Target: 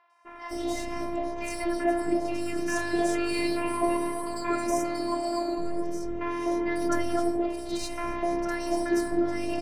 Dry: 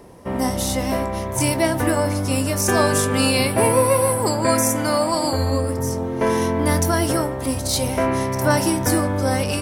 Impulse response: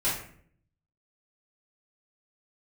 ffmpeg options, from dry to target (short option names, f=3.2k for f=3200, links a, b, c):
-filter_complex "[0:a]highpass=41,aemphasis=mode=reproduction:type=cd,afftfilt=real='hypot(re,im)*cos(PI*b)':imag='0':win_size=512:overlap=0.75,adynamicsmooth=sensitivity=8:basefreq=7.1k,acrossover=split=930|3800[a][b][c];[c]adelay=100[d];[a]adelay=250[e];[e][b][d]amix=inputs=3:normalize=0,volume=-3dB"